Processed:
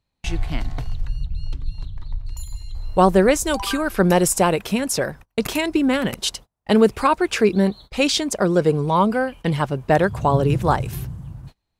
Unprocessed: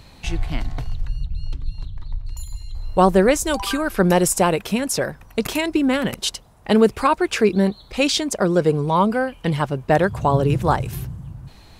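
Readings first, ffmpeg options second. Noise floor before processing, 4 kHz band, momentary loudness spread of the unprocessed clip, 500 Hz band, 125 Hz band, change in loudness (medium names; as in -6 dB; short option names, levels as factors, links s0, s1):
-47 dBFS, 0.0 dB, 17 LU, 0.0 dB, 0.0 dB, 0.0 dB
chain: -af "agate=range=0.0251:threshold=0.0141:ratio=16:detection=peak"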